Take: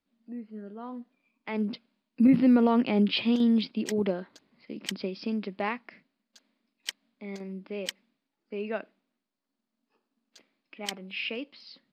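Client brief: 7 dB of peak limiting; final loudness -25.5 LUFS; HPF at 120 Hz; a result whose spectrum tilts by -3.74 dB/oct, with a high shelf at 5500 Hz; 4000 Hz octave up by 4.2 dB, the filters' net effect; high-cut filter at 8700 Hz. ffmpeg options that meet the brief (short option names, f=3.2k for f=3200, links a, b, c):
-af "highpass=120,lowpass=8.7k,equalizer=f=4k:t=o:g=7.5,highshelf=f=5.5k:g=-4,volume=4.5dB,alimiter=limit=-13.5dB:level=0:latency=1"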